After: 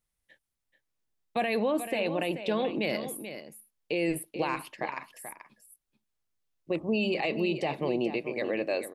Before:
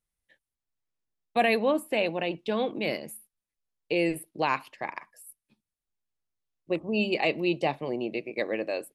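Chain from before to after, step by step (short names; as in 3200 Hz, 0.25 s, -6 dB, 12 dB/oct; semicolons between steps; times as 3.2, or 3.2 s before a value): limiter -22.5 dBFS, peak gain reduction 10.5 dB; echo 0.434 s -10.5 dB; gain +3 dB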